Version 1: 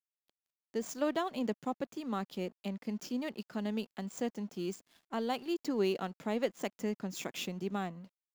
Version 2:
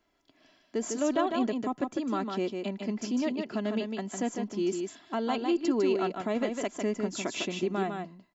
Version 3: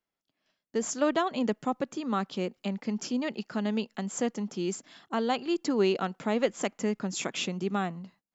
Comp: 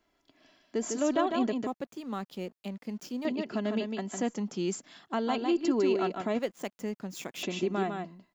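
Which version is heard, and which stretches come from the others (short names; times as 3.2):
2
1.67–3.25 from 1
4.27–5.16 from 3, crossfade 0.16 s
6.39–7.43 from 1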